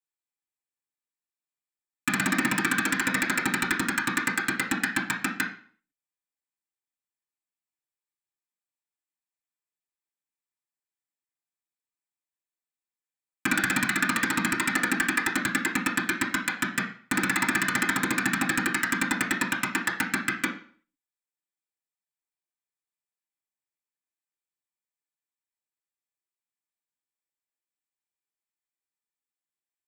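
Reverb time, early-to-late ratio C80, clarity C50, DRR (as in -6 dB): 0.50 s, 13.0 dB, 8.5 dB, -4.0 dB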